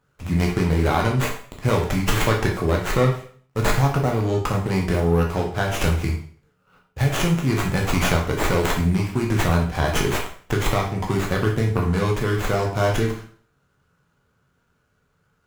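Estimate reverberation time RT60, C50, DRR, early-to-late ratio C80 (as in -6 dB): 0.45 s, 7.0 dB, -0.5 dB, 11.0 dB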